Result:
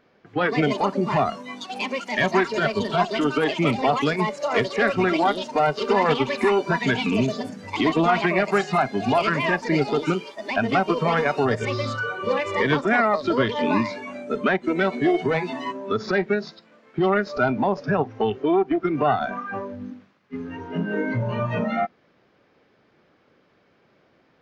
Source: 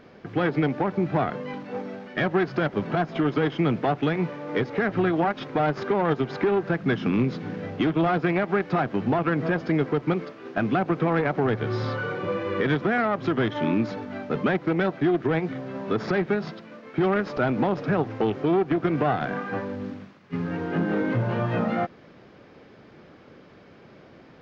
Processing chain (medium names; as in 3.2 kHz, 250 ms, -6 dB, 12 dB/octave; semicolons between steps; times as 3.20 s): bass shelf 420 Hz -6.5 dB; ever faster or slower copies 262 ms, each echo +6 st, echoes 2, each echo -6 dB; spectral noise reduction 14 dB; trim +6 dB